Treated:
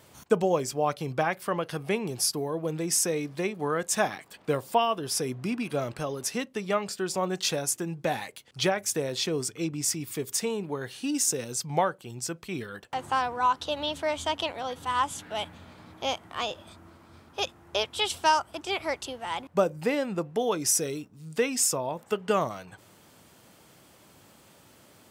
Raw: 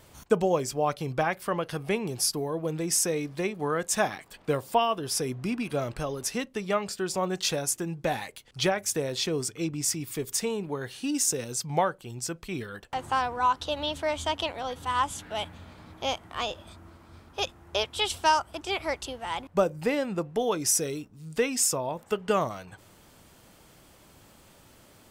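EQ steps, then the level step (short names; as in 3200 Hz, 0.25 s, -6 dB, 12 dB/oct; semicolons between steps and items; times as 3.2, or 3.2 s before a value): HPF 100 Hz; 0.0 dB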